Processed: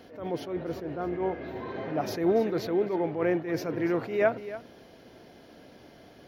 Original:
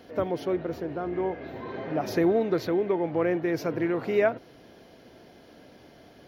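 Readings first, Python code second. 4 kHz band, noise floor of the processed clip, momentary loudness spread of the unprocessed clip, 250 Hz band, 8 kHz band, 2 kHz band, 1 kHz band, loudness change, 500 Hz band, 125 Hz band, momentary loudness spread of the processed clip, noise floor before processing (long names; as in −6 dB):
−0.5 dB, −53 dBFS, 9 LU, −2.0 dB, can't be measured, −1.5 dB, −1.0 dB, −2.0 dB, −2.0 dB, −1.5 dB, 11 LU, −53 dBFS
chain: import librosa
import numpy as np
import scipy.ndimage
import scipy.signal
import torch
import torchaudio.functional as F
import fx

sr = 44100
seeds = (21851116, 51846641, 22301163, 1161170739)

y = x + 10.0 ** (-15.0 / 20.0) * np.pad(x, (int(288 * sr / 1000.0), 0))[:len(x)]
y = fx.attack_slew(y, sr, db_per_s=110.0)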